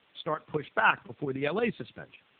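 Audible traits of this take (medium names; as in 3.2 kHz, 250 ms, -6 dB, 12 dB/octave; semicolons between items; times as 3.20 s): tremolo saw up 8.8 Hz, depth 65%; a quantiser's noise floor 10-bit, dither triangular; AMR-NB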